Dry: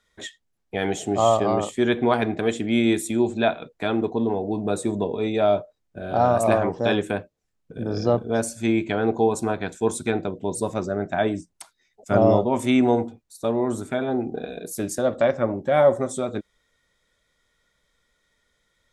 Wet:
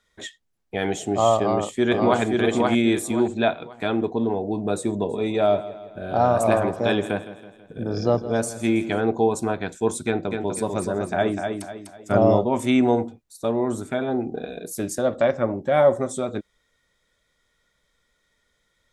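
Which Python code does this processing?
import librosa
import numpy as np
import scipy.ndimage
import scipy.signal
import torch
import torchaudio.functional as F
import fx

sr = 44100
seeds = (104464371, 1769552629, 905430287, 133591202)

y = fx.echo_throw(x, sr, start_s=1.38, length_s=0.83, ms=530, feedback_pct=30, wet_db=-2.0)
y = fx.echo_feedback(y, sr, ms=163, feedback_pct=51, wet_db=-15.0, at=(5.08, 9.0), fade=0.02)
y = fx.echo_feedback(y, sr, ms=249, feedback_pct=36, wet_db=-5.5, at=(10.06, 12.13))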